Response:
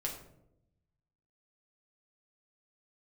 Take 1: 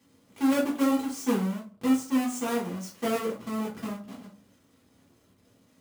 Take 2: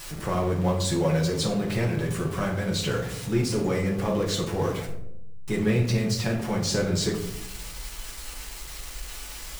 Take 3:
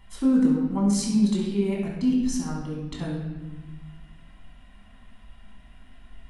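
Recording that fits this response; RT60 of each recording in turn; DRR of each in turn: 2; 0.45, 0.80, 1.2 s; -6.5, -2.0, -4.0 dB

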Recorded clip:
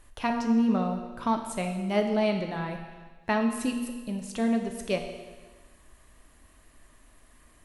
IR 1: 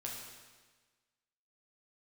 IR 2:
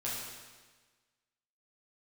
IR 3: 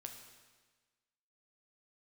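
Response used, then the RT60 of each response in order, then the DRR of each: 3; 1.4, 1.4, 1.4 s; -2.5, -7.5, 3.5 dB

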